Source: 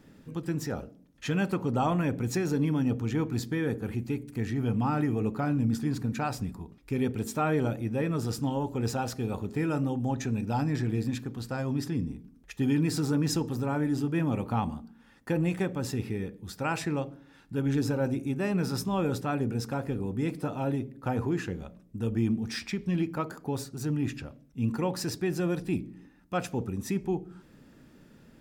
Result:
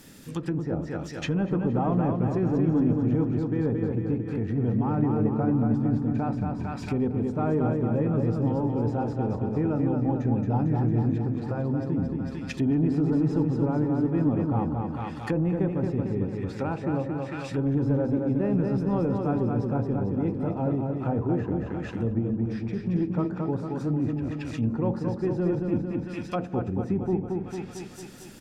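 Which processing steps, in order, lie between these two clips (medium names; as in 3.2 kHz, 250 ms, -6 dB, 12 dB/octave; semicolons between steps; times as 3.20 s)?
22.18–22.94 s: compression, threshold -27 dBFS, peak gain reduction 5.5 dB; treble shelf 2.2 kHz +9 dB; saturation -20 dBFS, distortion -20 dB; feedback delay 225 ms, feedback 59%, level -4 dB; low-pass that closes with the level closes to 730 Hz, closed at -27.5 dBFS; treble shelf 6.3 kHz +11.5 dB; trim +3.5 dB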